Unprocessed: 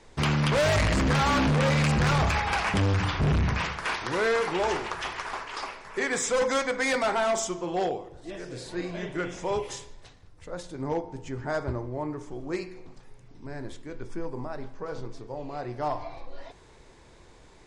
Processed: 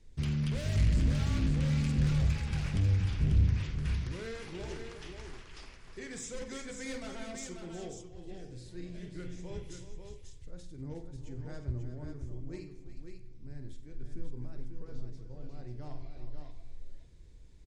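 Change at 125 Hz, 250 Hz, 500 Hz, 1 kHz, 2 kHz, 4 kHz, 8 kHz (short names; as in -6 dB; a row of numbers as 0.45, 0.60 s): -2.5, -7.5, -17.0, -23.0, -17.5, -13.5, -12.0 dB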